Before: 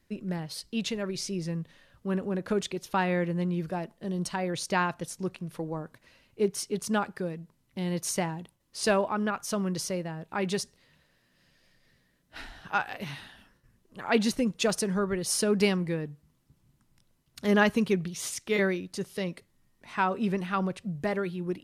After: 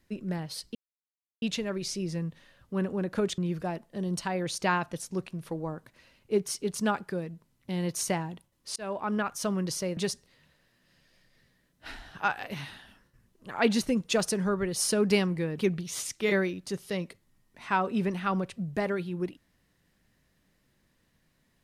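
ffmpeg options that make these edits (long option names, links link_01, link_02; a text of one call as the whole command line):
ffmpeg -i in.wav -filter_complex "[0:a]asplit=6[link_01][link_02][link_03][link_04][link_05][link_06];[link_01]atrim=end=0.75,asetpts=PTS-STARTPTS,afade=type=out:start_time=0.746:duration=0.004:curve=hsin,apad=pad_dur=0.67[link_07];[link_02]atrim=start=0.75:end=2.712,asetpts=PTS-STARTPTS,afade=type=in:duration=0.004:curve=hsin[link_08];[link_03]atrim=start=3.458:end=8.84,asetpts=PTS-STARTPTS,afade=type=out:start_time=5.378:duration=0.004:curve=hsin[link_09];[link_04]atrim=start=8.84:end=10.052,asetpts=PTS-STARTPTS,afade=type=in:duration=0.37[link_10];[link_05]atrim=start=10.468:end=16.082[link_11];[link_06]atrim=start=17.848[link_12];[link_07][link_08]concat=n=2:v=0:a=1[link_13];[link_09][link_10]concat=n=2:v=0:a=1[link_14];[link_13][link_14]acrossfade=duration=0.004:curve1=hsin:curve2=hsin[link_15];[link_15][link_11]acrossfade=duration=0.004:curve1=hsin:curve2=hsin[link_16];[link_16][link_12]acrossfade=duration=0.004:curve1=hsin:curve2=hsin" out.wav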